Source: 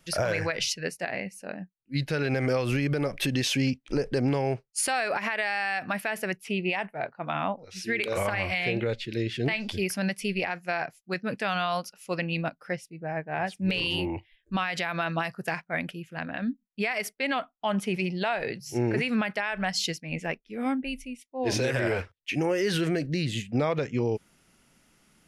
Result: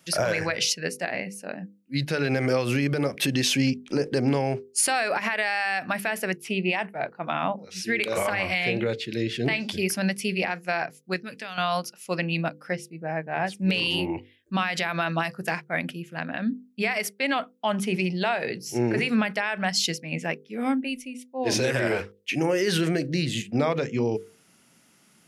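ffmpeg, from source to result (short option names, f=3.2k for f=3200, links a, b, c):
-filter_complex "[0:a]asettb=1/sr,asplit=3[a][b][c];[a]atrim=end=11.164[d];[b]atrim=start=11.16:end=11.58,asetpts=PTS-STARTPTS,afade=t=in:d=0.004:c=qsin,afade=t=out:st=0.416:d=0.004:c=qsin,acrossover=split=1700|5800[e][f][g];[e]acompressor=threshold=-43dB:ratio=4[h];[f]acompressor=threshold=-42dB:ratio=4[i];[g]acompressor=threshold=-60dB:ratio=4[j];[h][i][j]amix=inputs=3:normalize=0[k];[c]atrim=start=11.576[l];[d][k]acrossfade=d=0.004:c1=hsin:c2=qsin[m];[m][l]acrossfade=d=0.004:c1=qsin:c2=hsin,highpass=160,bass=f=250:g=4,treble=f=4k:g=3,bandreject=f=50:t=h:w=6,bandreject=f=100:t=h:w=6,bandreject=f=150:t=h:w=6,bandreject=f=200:t=h:w=6,bandreject=f=250:t=h:w=6,bandreject=f=300:t=h:w=6,bandreject=f=350:t=h:w=6,bandreject=f=400:t=h:w=6,bandreject=f=450:t=h:w=6,bandreject=f=500:t=h:w=6,volume=2.5dB"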